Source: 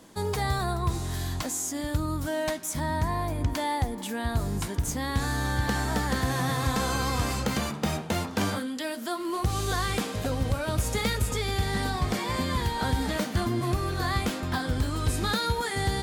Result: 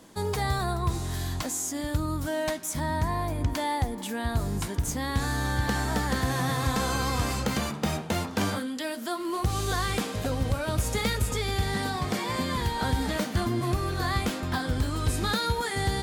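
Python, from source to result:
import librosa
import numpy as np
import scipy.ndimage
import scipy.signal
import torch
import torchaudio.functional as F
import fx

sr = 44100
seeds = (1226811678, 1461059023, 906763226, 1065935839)

y = fx.quant_companded(x, sr, bits=8, at=(9.32, 9.95))
y = fx.highpass(y, sr, hz=98.0, slope=12, at=(11.74, 12.58))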